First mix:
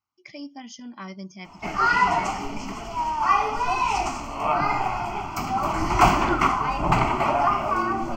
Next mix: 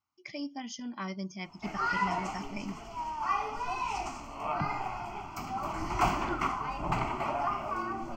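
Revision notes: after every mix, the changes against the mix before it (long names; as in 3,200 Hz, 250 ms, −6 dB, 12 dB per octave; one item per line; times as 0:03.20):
background −10.5 dB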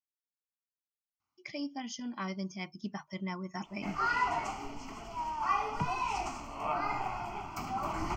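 speech: entry +1.20 s
background: entry +2.20 s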